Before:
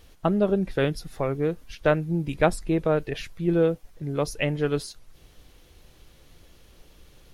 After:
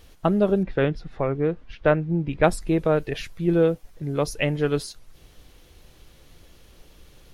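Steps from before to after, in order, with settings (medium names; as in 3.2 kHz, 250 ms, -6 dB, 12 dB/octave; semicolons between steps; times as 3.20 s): 0.63–2.44 s: low-pass 2.7 kHz 12 dB/octave; trim +2 dB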